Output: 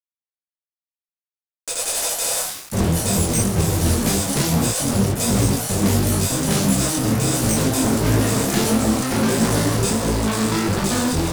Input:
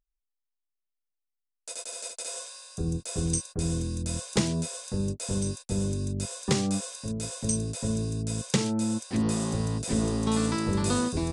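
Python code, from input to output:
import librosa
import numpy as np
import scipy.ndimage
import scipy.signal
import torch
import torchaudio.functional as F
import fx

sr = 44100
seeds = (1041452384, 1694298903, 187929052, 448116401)

y = fx.fuzz(x, sr, gain_db=42.0, gate_db=-41.0)
y = fx.echo_pitch(y, sr, ms=386, semitones=3, count=2, db_per_echo=-3.0)
y = fx.detune_double(y, sr, cents=51)
y = F.gain(torch.from_numpy(y), -1.5).numpy()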